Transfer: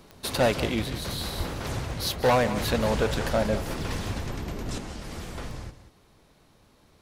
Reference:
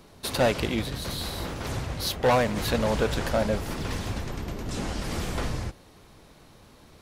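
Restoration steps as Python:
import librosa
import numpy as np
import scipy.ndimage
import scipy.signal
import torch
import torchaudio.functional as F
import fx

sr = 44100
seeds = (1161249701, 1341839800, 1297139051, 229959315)

y = fx.fix_declick_ar(x, sr, threshold=10.0)
y = fx.highpass(y, sr, hz=140.0, slope=24, at=(1.37, 1.49), fade=0.02)
y = fx.fix_echo_inverse(y, sr, delay_ms=185, level_db=-13.0)
y = fx.gain(y, sr, db=fx.steps((0.0, 0.0), (4.78, 7.0)))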